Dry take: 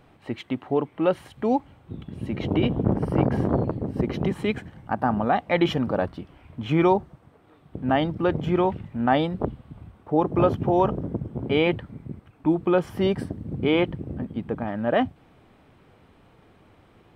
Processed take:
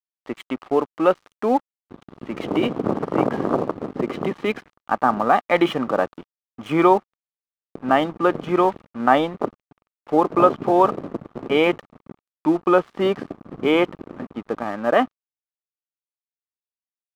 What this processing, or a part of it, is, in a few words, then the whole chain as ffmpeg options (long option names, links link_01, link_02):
pocket radio on a weak battery: -af "highpass=270,lowpass=3300,aeval=exprs='sgn(val(0))*max(abs(val(0))-0.00631,0)':channel_layout=same,equalizer=frequency=1200:width_type=o:width=0.3:gain=8,volume=5dB"